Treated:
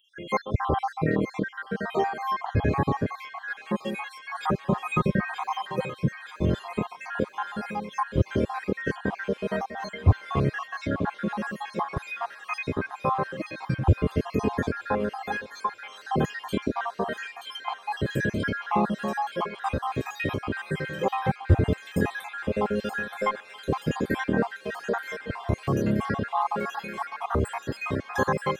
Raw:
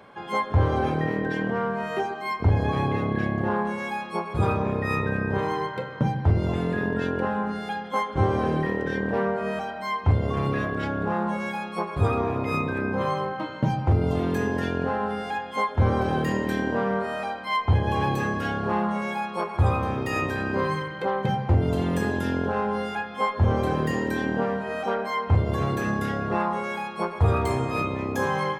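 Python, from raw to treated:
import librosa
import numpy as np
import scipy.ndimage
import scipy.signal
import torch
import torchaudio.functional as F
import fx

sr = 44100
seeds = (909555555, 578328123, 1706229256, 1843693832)

y = fx.spec_dropout(x, sr, seeds[0], share_pct=71)
y = fx.comb(y, sr, ms=5.5, depth=0.83, at=(3.5, 5.9))
y = fx.echo_wet_highpass(y, sr, ms=927, feedback_pct=75, hz=1900.0, wet_db=-7)
y = y * librosa.db_to_amplitude(3.0)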